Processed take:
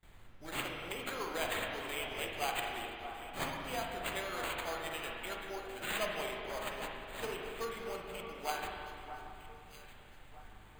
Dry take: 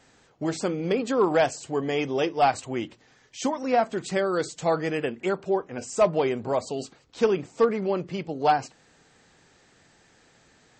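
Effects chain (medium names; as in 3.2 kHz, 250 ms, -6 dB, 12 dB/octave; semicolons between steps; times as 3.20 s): pre-emphasis filter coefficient 0.97; added noise brown -59 dBFS; gate with hold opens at -53 dBFS; careless resampling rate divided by 8×, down none, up hold; on a send: echo whose repeats swap between lows and highs 628 ms, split 1.6 kHz, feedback 55%, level -9 dB; on the sum: spring tank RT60 2.3 s, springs 39/59 ms, chirp 55 ms, DRR 0 dB; trim +1 dB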